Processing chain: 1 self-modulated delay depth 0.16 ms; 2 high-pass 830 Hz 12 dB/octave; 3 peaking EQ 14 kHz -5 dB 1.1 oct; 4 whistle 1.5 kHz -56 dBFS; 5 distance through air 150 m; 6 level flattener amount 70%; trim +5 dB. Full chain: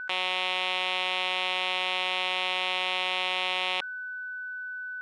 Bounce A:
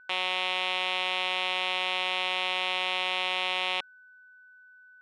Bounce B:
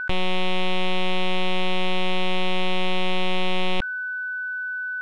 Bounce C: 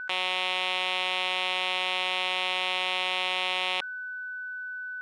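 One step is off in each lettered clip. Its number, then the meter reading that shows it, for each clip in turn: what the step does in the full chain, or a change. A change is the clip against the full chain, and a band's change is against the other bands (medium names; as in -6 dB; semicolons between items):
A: 6, crest factor change -2.0 dB; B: 2, 250 Hz band +16.5 dB; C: 3, 8 kHz band +2.0 dB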